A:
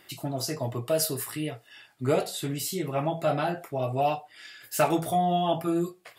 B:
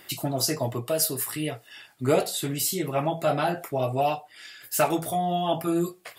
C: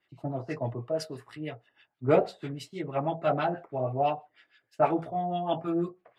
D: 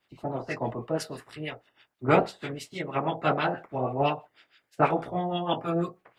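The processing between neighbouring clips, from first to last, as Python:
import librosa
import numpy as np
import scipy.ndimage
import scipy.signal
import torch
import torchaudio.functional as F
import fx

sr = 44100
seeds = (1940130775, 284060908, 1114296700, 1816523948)

y1 = fx.high_shelf(x, sr, hz=7500.0, db=5.5)
y1 = fx.hpss(y1, sr, part='percussive', gain_db=3)
y1 = fx.rider(y1, sr, range_db=4, speed_s=0.5)
y2 = fx.filter_lfo_lowpass(y1, sr, shape='sine', hz=6.2, low_hz=650.0, high_hz=2900.0, q=1.0)
y2 = fx.band_widen(y2, sr, depth_pct=70)
y2 = y2 * 10.0 ** (-4.0 / 20.0)
y3 = fx.spec_clip(y2, sr, under_db=14)
y3 = y3 * 10.0 ** (1.5 / 20.0)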